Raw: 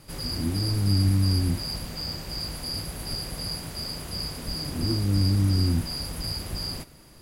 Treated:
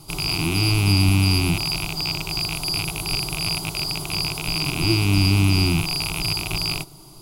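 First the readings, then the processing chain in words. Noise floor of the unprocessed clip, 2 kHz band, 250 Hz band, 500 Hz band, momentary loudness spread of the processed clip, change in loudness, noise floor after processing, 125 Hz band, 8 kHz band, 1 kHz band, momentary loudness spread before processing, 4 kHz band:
-50 dBFS, +17.0 dB, +5.0 dB, +6.5 dB, 7 LU, +6.0 dB, -44 dBFS, +4.0 dB, +8.5 dB, +10.5 dB, 10 LU, +8.0 dB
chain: rattle on loud lows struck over -35 dBFS, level -16 dBFS; static phaser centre 350 Hz, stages 8; trim +8.5 dB

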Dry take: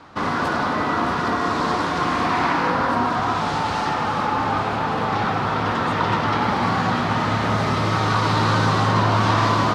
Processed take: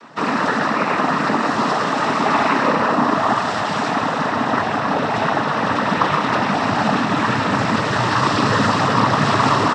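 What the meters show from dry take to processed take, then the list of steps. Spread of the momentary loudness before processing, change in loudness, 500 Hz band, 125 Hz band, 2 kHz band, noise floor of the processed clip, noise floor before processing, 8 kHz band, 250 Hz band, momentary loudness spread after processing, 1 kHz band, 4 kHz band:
4 LU, +2.5 dB, +4.0 dB, -1.5 dB, +4.0 dB, -22 dBFS, -23 dBFS, +4.0 dB, +3.5 dB, 4 LU, +2.5 dB, +2.5 dB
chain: comb 4 ms, depth 51%; noise-vocoded speech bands 12; trim +2.5 dB

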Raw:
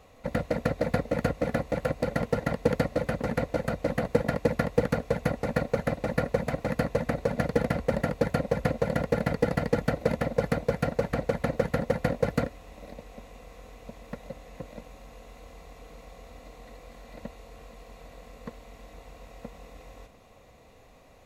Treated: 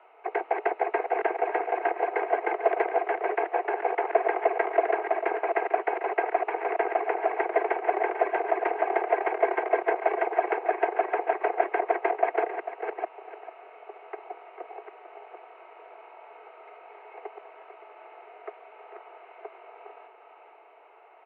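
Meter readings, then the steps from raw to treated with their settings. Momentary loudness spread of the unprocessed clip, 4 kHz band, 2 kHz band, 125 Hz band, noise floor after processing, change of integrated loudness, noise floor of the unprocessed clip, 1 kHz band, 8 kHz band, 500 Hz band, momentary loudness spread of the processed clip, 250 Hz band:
19 LU, no reading, +4.0 dB, under -40 dB, -53 dBFS, +1.5 dB, -55 dBFS, +10.0 dB, under -30 dB, +1.5 dB, 19 LU, -9.5 dB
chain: chunks repeated in reverse 468 ms, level -7 dB; mistuned SSB +190 Hz 200–2400 Hz; delay 446 ms -11.5 dB; trim +1.5 dB

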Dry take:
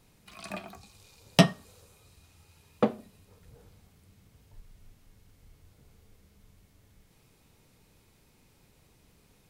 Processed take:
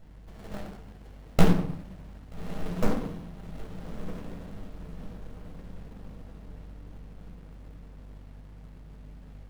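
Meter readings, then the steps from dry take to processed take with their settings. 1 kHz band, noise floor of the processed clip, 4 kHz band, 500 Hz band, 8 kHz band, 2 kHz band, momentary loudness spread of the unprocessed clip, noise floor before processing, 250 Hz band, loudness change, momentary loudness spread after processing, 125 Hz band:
-1.0 dB, -48 dBFS, -9.5 dB, -1.5 dB, -5.0 dB, -4.0 dB, 18 LU, -64 dBFS, +2.0 dB, -5.0 dB, 19 LU, +2.5 dB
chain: treble shelf 12 kHz +9.5 dB; in parallel at +2 dB: compression, threshold -56 dBFS, peak gain reduction 38.5 dB; on the sum: sample-rate reducer 6.7 kHz, jitter 0%; half-wave rectifier; hum 50 Hz, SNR 21 dB; on a send: echo that smears into a reverb 1262 ms, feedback 51%, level -10.5 dB; on the sum: simulated room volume 790 m³, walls furnished, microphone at 6.8 m; sliding maximum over 33 samples; trim -5.5 dB

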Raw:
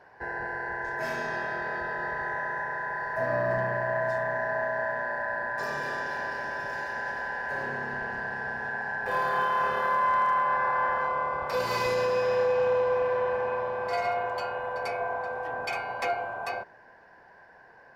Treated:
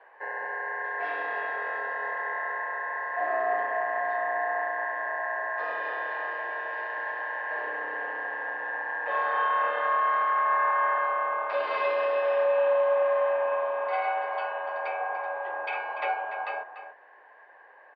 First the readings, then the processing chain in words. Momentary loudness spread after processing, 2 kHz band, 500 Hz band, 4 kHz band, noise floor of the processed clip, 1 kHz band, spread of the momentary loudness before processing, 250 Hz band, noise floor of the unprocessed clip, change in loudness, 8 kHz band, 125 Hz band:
8 LU, +0.5 dB, +0.5 dB, -4.5 dB, -53 dBFS, +1.0 dB, 8 LU, under -10 dB, -54 dBFS, +0.5 dB, no reading, under -35 dB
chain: echo from a far wall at 50 m, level -10 dB; mistuned SSB +61 Hz 310–3400 Hz

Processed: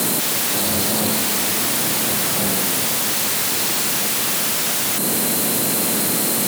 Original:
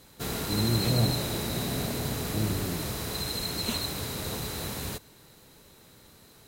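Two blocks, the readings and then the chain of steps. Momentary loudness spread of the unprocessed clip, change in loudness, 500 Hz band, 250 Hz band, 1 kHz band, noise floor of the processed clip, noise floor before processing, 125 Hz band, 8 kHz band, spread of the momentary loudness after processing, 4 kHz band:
8 LU, +13.0 dB, +9.0 dB, +8.0 dB, +13.0 dB, -20 dBFS, -56 dBFS, -1.5 dB, +19.5 dB, 1 LU, +11.0 dB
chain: spectral levelling over time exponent 0.6; compression 16:1, threshold -32 dBFS, peak gain reduction 14.5 dB; resonant high shelf 6.7 kHz +9.5 dB, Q 1.5; sine folder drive 17 dB, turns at -19 dBFS; frequency shift +94 Hz; trim +3.5 dB

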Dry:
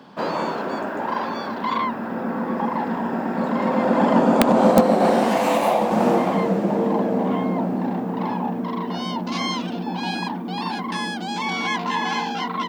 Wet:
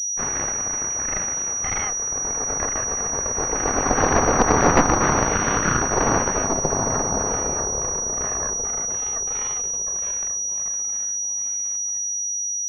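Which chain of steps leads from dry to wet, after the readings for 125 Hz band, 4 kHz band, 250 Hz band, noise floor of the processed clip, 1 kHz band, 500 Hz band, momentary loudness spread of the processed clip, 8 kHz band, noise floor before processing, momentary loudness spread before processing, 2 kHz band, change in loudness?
0.0 dB, -9.5 dB, -7.5 dB, -26 dBFS, -2.5 dB, -4.5 dB, 5 LU, +26.0 dB, -29 dBFS, 10 LU, +1.0 dB, +1.0 dB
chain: fade out at the end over 4.17 s; Chebyshev shaper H 3 -9 dB, 4 -7 dB, 8 -26 dB, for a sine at -3 dBFS; class-D stage that switches slowly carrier 5.8 kHz; trim -1.5 dB

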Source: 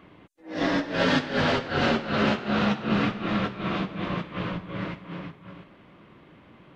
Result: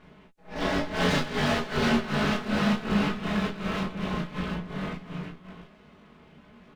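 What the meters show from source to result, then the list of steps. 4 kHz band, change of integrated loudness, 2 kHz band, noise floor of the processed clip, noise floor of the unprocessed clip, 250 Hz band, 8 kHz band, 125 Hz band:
-1.5 dB, -1.5 dB, -2.0 dB, -55 dBFS, -54 dBFS, -1.0 dB, no reading, 0.0 dB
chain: comb filter that takes the minimum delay 4.7 ms; bass shelf 230 Hz +5 dB; early reflections 21 ms -4 dB, 34 ms -5.5 dB, 46 ms -14 dB; trim -3.5 dB

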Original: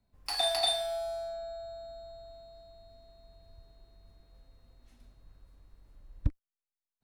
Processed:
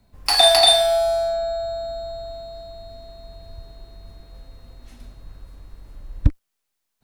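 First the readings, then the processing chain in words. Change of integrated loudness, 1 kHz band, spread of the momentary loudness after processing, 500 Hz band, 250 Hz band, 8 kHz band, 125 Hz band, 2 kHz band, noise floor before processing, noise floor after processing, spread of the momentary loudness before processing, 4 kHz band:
+15.0 dB, +15.5 dB, 22 LU, +16.0 dB, +13.5 dB, +15.5 dB, +13.0 dB, +15.5 dB, under -85 dBFS, -78 dBFS, 22 LU, +15.5 dB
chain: loudness maximiser +17 dB; trim -1 dB

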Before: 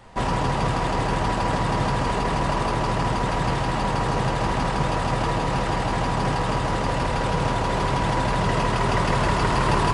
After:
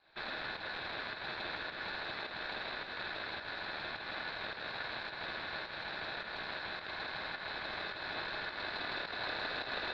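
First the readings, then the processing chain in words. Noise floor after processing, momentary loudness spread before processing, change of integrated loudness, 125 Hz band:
-46 dBFS, 3 LU, -16.5 dB, -33.5 dB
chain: comb filter that takes the minimum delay 0.31 ms; four-pole ladder low-pass 2.6 kHz, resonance 70%; volume shaper 106 bpm, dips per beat 1, -7 dB, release 226 ms; ring modulator 1.6 kHz; trim -4.5 dB

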